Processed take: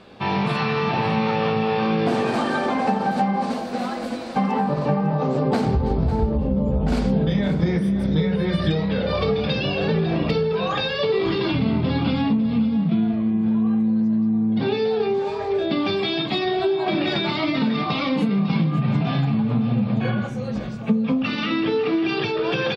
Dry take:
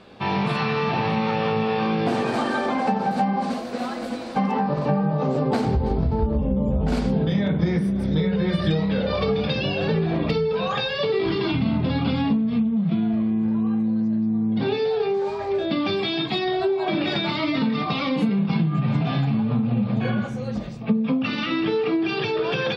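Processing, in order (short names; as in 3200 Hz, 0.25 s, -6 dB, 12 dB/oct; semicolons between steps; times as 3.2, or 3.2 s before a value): echo 0.551 s -13 dB; gain +1 dB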